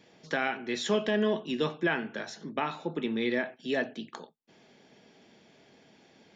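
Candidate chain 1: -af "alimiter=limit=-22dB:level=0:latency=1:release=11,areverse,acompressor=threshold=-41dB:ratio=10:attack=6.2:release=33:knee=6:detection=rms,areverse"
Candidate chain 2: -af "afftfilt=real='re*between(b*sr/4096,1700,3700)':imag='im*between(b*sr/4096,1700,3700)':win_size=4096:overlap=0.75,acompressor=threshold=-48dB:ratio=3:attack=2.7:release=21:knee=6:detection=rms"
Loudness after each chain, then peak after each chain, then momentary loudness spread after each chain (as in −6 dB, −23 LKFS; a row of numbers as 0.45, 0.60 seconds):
−44.5, −48.0 LKFS; −31.5, −35.0 dBFS; 16, 18 LU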